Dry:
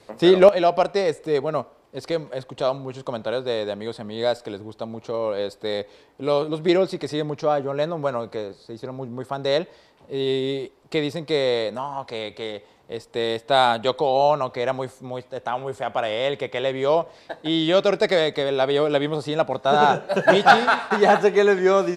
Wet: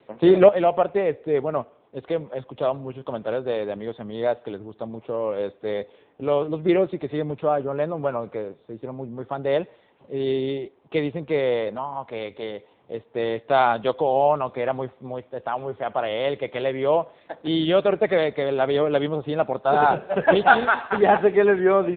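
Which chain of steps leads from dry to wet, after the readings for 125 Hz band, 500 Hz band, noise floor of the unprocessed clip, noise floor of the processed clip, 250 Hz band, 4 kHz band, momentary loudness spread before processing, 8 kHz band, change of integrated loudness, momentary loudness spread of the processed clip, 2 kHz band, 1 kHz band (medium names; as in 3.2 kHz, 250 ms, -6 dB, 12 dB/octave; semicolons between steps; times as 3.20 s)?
-0.5 dB, -0.5 dB, -54 dBFS, -58 dBFS, -0.5 dB, -7.5 dB, 16 LU, no reading, -1.0 dB, 16 LU, -1.5 dB, -1.0 dB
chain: AMR-NB 6.7 kbps 8 kHz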